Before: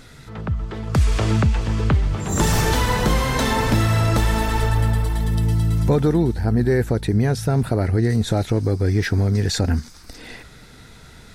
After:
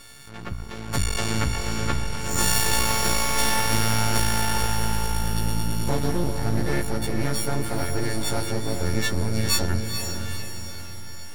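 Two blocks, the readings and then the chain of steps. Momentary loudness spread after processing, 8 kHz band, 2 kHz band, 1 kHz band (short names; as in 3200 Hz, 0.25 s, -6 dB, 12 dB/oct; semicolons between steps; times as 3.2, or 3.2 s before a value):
14 LU, +4.5 dB, -1.0 dB, -2.0 dB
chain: frequency quantiser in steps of 4 st; half-wave rectifier; diffused feedback echo 0.474 s, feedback 50%, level -6 dB; gain -3.5 dB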